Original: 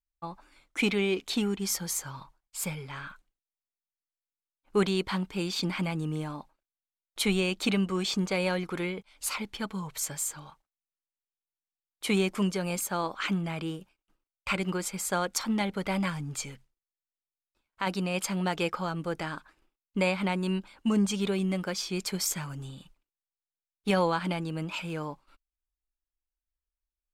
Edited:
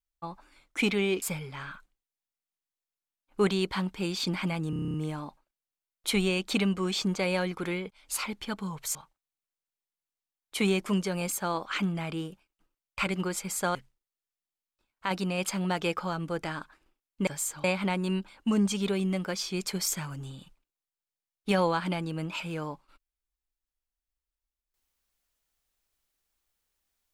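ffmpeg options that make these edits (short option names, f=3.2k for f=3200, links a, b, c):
-filter_complex "[0:a]asplit=14[a][b][c][d][e][f][g][h][i][j][k][l][m][n];[a]atrim=end=1.222[o];[b]atrim=start=2.578:end=6.092[p];[c]atrim=start=6.058:end=6.092[q];[d]atrim=start=6.058:end=6.092[r];[e]atrim=start=6.058:end=6.092[s];[f]atrim=start=6.058:end=6.092[t];[g]atrim=start=6.058:end=6.092[u];[h]atrim=start=6.058:end=6.092[v];[i]atrim=start=6.058:end=6.092[w];[j]atrim=start=6.058:end=10.072[x];[k]atrim=start=10.438:end=15.242[y];[l]atrim=start=16.508:end=20.032[z];[m]atrim=start=10.068:end=10.442[aa];[n]atrim=start=20.028[ab];[o][p]acrossfade=d=0.004:c1=hsin:c2=hsin[ac];[ac][q]acrossfade=d=0.004:c1=hsin:c2=hsin[ad];[ad][r]acrossfade=d=0.004:c1=hsin:c2=hsin[ae];[ae][s]acrossfade=d=0.004:c1=hsin:c2=hsin[af];[af][t]acrossfade=d=0.004:c1=hsin:c2=hsin[ag];[ag][u]acrossfade=d=0.004:c1=hsin:c2=hsin[ah];[ah][v]acrossfade=d=0.004:c1=hsin:c2=hsin[ai];[ai][w]acrossfade=d=0.004:c1=hsin:c2=hsin[aj];[aj][x]acrossfade=d=0.004:c1=hsin:c2=hsin[ak];[ak][y]acrossfade=d=0.004:c1=hsin:c2=hsin[al];[al][z]acrossfade=d=0.004:c1=hsin:c2=hsin[am];[am][aa]acrossfade=d=0.004:c1=hsin:c2=hsin[an];[an][ab]acrossfade=d=0.004:c1=hsin:c2=hsin"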